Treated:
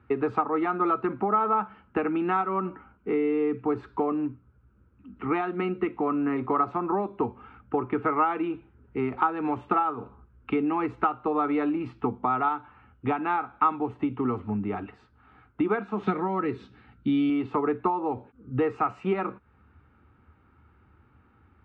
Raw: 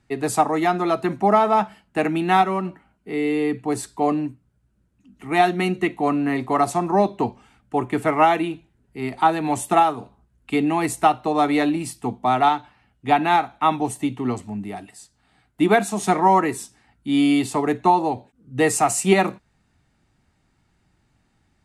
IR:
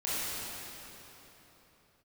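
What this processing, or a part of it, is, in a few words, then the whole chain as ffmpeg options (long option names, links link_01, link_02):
bass amplifier: -filter_complex "[0:a]acompressor=threshold=-30dB:ratio=5,highpass=65,equalizer=frequency=74:width_type=q:width=4:gain=10,equalizer=frequency=160:width_type=q:width=4:gain=-10,equalizer=frequency=460:width_type=q:width=4:gain=4,equalizer=frequency=660:width_type=q:width=4:gain=-10,equalizer=frequency=1300:width_type=q:width=4:gain=9,equalizer=frequency=1900:width_type=q:width=4:gain=-8,lowpass=frequency=2300:width=0.5412,lowpass=frequency=2300:width=1.3066,asettb=1/sr,asplit=3[link_01][link_02][link_03];[link_01]atrim=end=16.064[link_04];[link_02]atrim=start=16.06:end=17.3,asetpts=PTS-STARTPTS,afade=type=in:duration=0.004:curve=qsin,afade=type=out:start_time=1.236:duration=0.004:curve=qsin,equalizer=frequency=160:width_type=o:width=0.67:gain=8,equalizer=frequency=1000:width_type=o:width=0.67:gain=-8,equalizer=frequency=4000:width_type=o:width=0.67:gain=11[link_05];[link_03]atrim=start=17.296[link_06];[link_04][link_05]acrossfade=duration=0.004:curve1=hsin:curve2=qsin[link_07];[link_07][link_06]acrossfade=duration=0.004:curve1=qsin:curve2=hsin,volume=6dB"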